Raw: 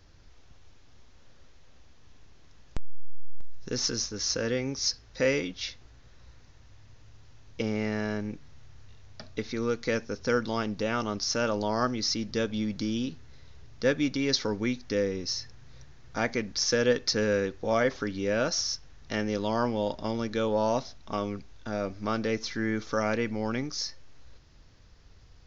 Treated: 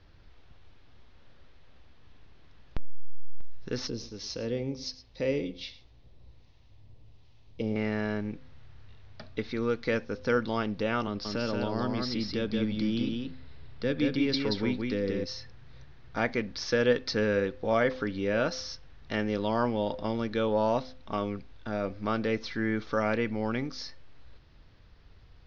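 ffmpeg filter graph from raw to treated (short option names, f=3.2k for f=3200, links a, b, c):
-filter_complex "[0:a]asettb=1/sr,asplit=3[a][b][c];[a]atrim=end=3.874[d];[b]atrim=start=3.87:end=7.76,asetpts=PTS-STARTPTS,afade=t=in:d=0.004:c=qsin,afade=t=out:st=3.886:d=0.004:c=qsin,equalizer=f=1.5k:t=o:w=0.91:g=-13,acrossover=split=800[e][f];[e]aeval=exprs='val(0)*(1-0.5/2+0.5/2*cos(2*PI*1.3*n/s))':c=same[g];[f]aeval=exprs='val(0)*(1-0.5/2-0.5/2*cos(2*PI*1.3*n/s))':c=same[h];[g][h]amix=inputs=2:normalize=0,aecho=1:1:109:0.158,atrim=end_sample=171549[i];[c]atrim=start=7.756[j];[d][i]acrossfade=d=0.004:c1=hsin:c2=qsin[k];[k][j]acrossfade=d=0.004:c1=qsin:c2=hsin,asettb=1/sr,asplit=3[l][m][n];[l]atrim=end=11.074[o];[m]atrim=start=11.07:end=15.24,asetpts=PTS-STARTPTS,afade=t=in:d=0.004:c=qsin,afade=t=out:st=4.166:d=0.004:c=qsin,acrossover=split=410|3000[p][q][r];[q]acompressor=threshold=-37dB:ratio=2.5:attack=3.2:release=140:knee=2.83:detection=peak[s];[p][s][r]amix=inputs=3:normalize=0,bandreject=f=6.1k:w=5.6,aecho=1:1:179:0.668,atrim=end_sample=183897[t];[n]atrim=start=15.236[u];[o][t]acrossfade=d=0.004:c1=hsin:c2=qsin[v];[v][u]acrossfade=d=0.004:c1=qsin:c2=hsin,lowpass=f=4.3k:w=0.5412,lowpass=f=4.3k:w=1.3066,bandreject=f=257.1:t=h:w=4,bandreject=f=514.2:t=h:w=4"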